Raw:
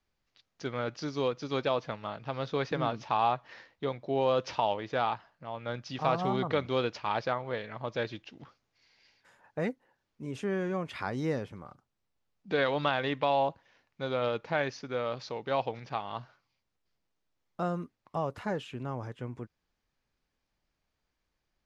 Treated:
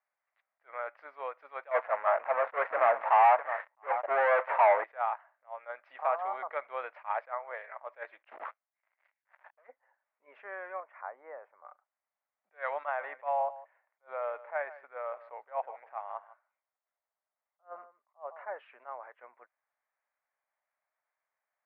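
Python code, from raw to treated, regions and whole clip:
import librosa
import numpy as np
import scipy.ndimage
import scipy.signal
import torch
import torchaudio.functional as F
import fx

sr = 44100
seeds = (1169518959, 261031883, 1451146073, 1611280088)

y = fx.chain(x, sr, fx.lowpass(hz=1600.0, slope=12),
    fx.echo_single(ms=661, db=-20.5),
    fx.leveller(passes=5), at=(1.71, 4.84))
y = fx.chain(y, sr, fx.leveller(passes=5),
    fx.band_widen(depth_pct=40), at=(8.24, 9.67))
y = fx.chain(y, sr, fx.lowpass(hz=1100.0, slope=12),
    fx.low_shelf(hz=440.0, db=-7.5), at=(10.8, 11.65))
y = fx.chain(y, sr, fx.high_shelf(hz=2700.0, db=-12.0),
    fx.echo_single(ms=154, db=-17.0), at=(12.85, 18.56))
y = scipy.signal.sosfilt(scipy.signal.ellip(3, 1.0, 70, [610.0, 2100.0], 'bandpass', fs=sr, output='sos'), y)
y = fx.attack_slew(y, sr, db_per_s=340.0)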